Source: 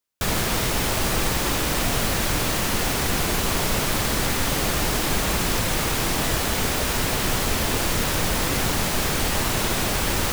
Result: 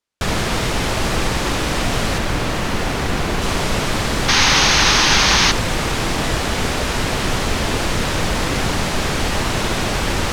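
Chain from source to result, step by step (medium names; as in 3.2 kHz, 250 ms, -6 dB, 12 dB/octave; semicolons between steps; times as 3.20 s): 2.18–3.42 s: peaking EQ 8.3 kHz -4.5 dB 2.6 oct; 4.28–5.52 s: painted sound noise 760–6700 Hz -18 dBFS; distance through air 57 m; trim +4.5 dB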